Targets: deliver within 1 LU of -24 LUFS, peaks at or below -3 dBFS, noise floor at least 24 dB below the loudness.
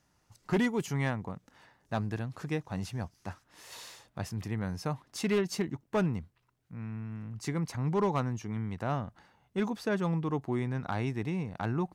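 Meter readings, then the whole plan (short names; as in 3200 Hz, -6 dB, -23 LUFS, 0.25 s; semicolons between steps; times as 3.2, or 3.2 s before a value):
clipped 0.6%; flat tops at -22.0 dBFS; loudness -33.5 LUFS; peak -22.0 dBFS; loudness target -24.0 LUFS
-> clip repair -22 dBFS; gain +9.5 dB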